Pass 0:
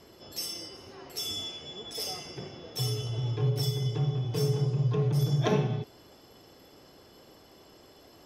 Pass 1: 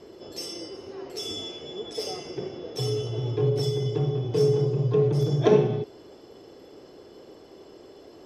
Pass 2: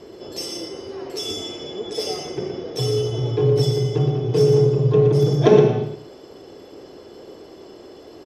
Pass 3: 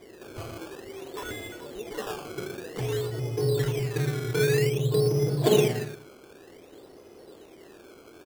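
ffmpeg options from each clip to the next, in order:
-af "lowpass=8k,equalizer=f=400:t=o:w=1.2:g=11.5"
-af "aecho=1:1:118|226:0.447|0.112,volume=5.5dB"
-af "acrusher=samples=16:mix=1:aa=0.000001:lfo=1:lforange=16:lforate=0.53,volume=-8dB"

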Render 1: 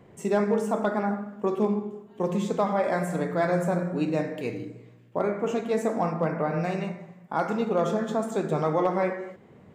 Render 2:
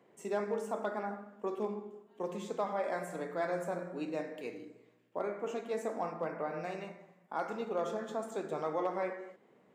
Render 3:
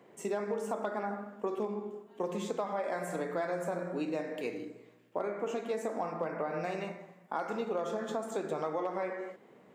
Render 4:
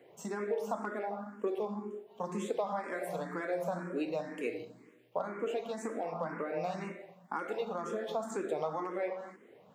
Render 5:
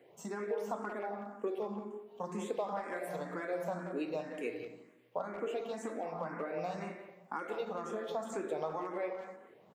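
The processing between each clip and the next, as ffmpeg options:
-af "highpass=290,volume=-9dB"
-af "acompressor=threshold=-37dB:ratio=6,volume=6.5dB"
-filter_complex "[0:a]asplit=2[a][b];[b]afreqshift=2[c];[a][c]amix=inputs=2:normalize=1,volume=2dB"
-filter_complex "[0:a]asplit=2[a][b];[b]adelay=180,highpass=300,lowpass=3.4k,asoftclip=type=hard:threshold=-29.5dB,volume=-9dB[c];[a][c]amix=inputs=2:normalize=0,volume=-2.5dB"

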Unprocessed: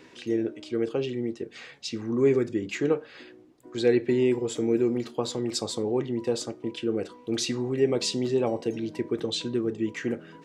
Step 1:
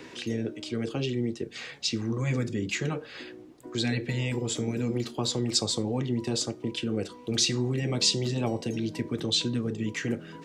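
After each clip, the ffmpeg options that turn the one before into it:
-filter_complex "[0:a]acrossover=split=8800[a][b];[b]acompressor=threshold=-56dB:ratio=4:attack=1:release=60[c];[a][c]amix=inputs=2:normalize=0,afftfilt=real='re*lt(hypot(re,im),0.398)':imag='im*lt(hypot(re,im),0.398)':win_size=1024:overlap=0.75,acrossover=split=190|3000[d][e][f];[e]acompressor=threshold=-52dB:ratio=1.5[g];[d][g][f]amix=inputs=3:normalize=0,volume=7dB"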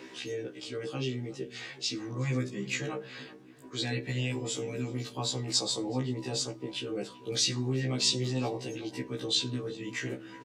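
-filter_complex "[0:a]lowshelf=f=130:g=-9,asplit=2[a][b];[b]adelay=377,lowpass=f=1.6k:p=1,volume=-16dB,asplit=2[c][d];[d]adelay=377,lowpass=f=1.6k:p=1,volume=0.36,asplit=2[e][f];[f]adelay=377,lowpass=f=1.6k:p=1,volume=0.36[g];[a][c][e][g]amix=inputs=4:normalize=0,afftfilt=real='re*1.73*eq(mod(b,3),0)':imag='im*1.73*eq(mod(b,3),0)':win_size=2048:overlap=0.75"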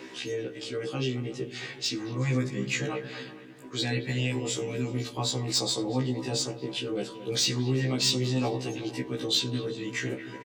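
-filter_complex "[0:a]acrossover=split=3500[a][b];[a]aecho=1:1:225|450|675|900:0.237|0.0972|0.0399|0.0163[c];[b]asoftclip=type=tanh:threshold=-25dB[d];[c][d]amix=inputs=2:normalize=0,volume=3.5dB"

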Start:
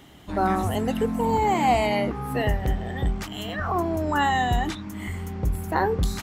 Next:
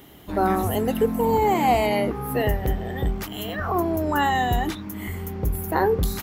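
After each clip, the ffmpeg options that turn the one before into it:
-af "equalizer=f=420:t=o:w=0.79:g=5,aexciter=amount=3.2:drive=7.9:freq=11k"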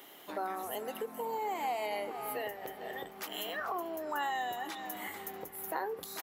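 -af "aecho=1:1:441|882|1323|1764:0.158|0.065|0.0266|0.0109,acompressor=threshold=-30dB:ratio=4,highpass=510,volume=-2dB"

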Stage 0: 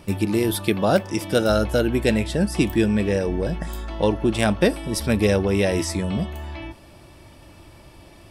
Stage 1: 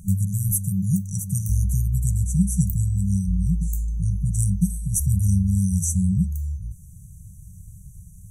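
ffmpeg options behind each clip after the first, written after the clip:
-af "afftfilt=real='re*(1-between(b*sr/4096,200,5800))':imag='im*(1-between(b*sr/4096,200,5800))':win_size=4096:overlap=0.75,bass=f=250:g=7,treble=f=4k:g=7"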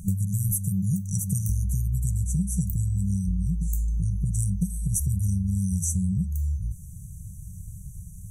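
-af "acompressor=threshold=-25dB:ratio=6,volume=3dB"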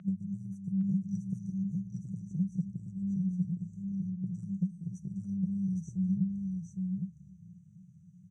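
-af "highpass=f=190:w=0.5412,highpass=f=190:w=1.3066,equalizer=f=190:t=q:w=4:g=4,equalizer=f=290:t=q:w=4:g=-5,equalizer=f=450:t=q:w=4:g=-7,equalizer=f=910:t=q:w=4:g=-8,equalizer=f=1.4k:t=q:w=4:g=4,lowpass=f=3.3k:w=0.5412,lowpass=f=3.3k:w=1.3066,aecho=1:1:812:0.668,volume=-2.5dB"

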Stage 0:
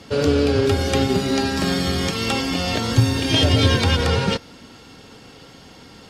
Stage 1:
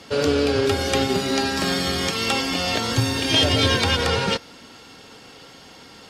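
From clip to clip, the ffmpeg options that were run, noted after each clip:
-af "lowshelf=f=290:g=-9,volume=1.5dB"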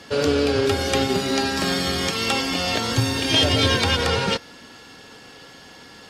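-af "aeval=exprs='val(0)+0.00282*sin(2*PI*1700*n/s)':c=same"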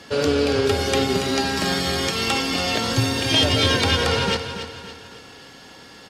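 -af "aecho=1:1:281|562|843|1124|1405:0.316|0.136|0.0585|0.0251|0.0108"

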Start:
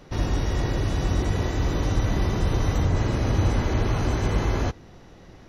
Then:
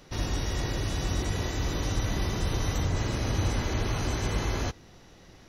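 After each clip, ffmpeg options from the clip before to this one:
-af "highshelf=f=2.4k:g=10,volume=-6dB"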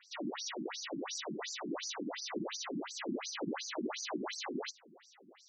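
-af "afftfilt=real='re*between(b*sr/1024,240*pow(6300/240,0.5+0.5*sin(2*PI*2.8*pts/sr))/1.41,240*pow(6300/240,0.5+0.5*sin(2*PI*2.8*pts/sr))*1.41)':imag='im*between(b*sr/1024,240*pow(6300/240,0.5+0.5*sin(2*PI*2.8*pts/sr))/1.41,240*pow(6300/240,0.5+0.5*sin(2*PI*2.8*pts/sr))*1.41)':win_size=1024:overlap=0.75,volume=2dB"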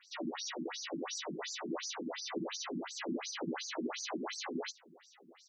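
-filter_complex "[0:a]asplit=2[a][b];[b]adelay=12,volume=-6dB[c];[a][c]amix=inputs=2:normalize=0,volume=-1dB"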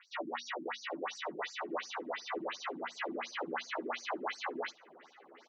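-filter_complex "[0:a]acrossover=split=450 2800:gain=0.126 1 0.112[a][b][c];[a][b][c]amix=inputs=3:normalize=0,bandreject=f=60:t=h:w=6,bandreject=f=120:t=h:w=6,bandreject=f=180:t=h:w=6,bandreject=f=240:t=h:w=6,asplit=2[d][e];[e]adelay=781,lowpass=f=1.9k:p=1,volume=-23dB,asplit=2[f][g];[g]adelay=781,lowpass=f=1.9k:p=1,volume=0.45,asplit=2[h][i];[i]adelay=781,lowpass=f=1.9k:p=1,volume=0.45[j];[d][f][h][j]amix=inputs=4:normalize=0,volume=6.5dB"

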